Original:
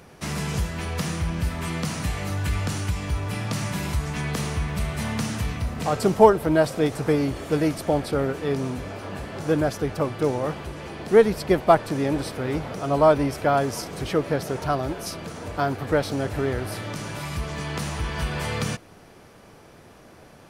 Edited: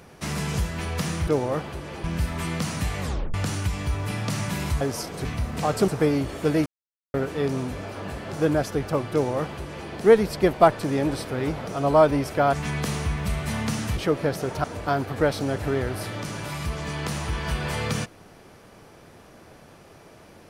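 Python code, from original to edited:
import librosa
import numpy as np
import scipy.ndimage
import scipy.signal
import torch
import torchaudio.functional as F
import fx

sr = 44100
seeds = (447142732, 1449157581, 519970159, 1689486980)

y = fx.edit(x, sr, fx.tape_stop(start_s=2.24, length_s=0.33),
    fx.swap(start_s=4.04, length_s=1.44, other_s=13.6, other_length_s=0.44),
    fx.cut(start_s=6.11, length_s=0.84),
    fx.silence(start_s=7.73, length_s=0.48),
    fx.duplicate(start_s=10.19, length_s=0.77, to_s=1.27),
    fx.cut(start_s=14.71, length_s=0.64), tone=tone)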